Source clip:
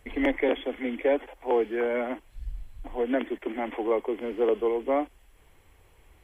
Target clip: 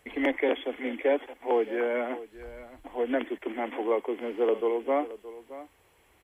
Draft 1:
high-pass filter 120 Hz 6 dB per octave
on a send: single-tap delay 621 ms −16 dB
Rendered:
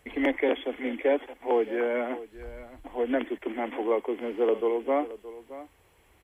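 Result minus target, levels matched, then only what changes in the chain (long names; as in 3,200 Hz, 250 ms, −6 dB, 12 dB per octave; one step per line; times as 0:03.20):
125 Hz band +3.0 dB
change: high-pass filter 240 Hz 6 dB per octave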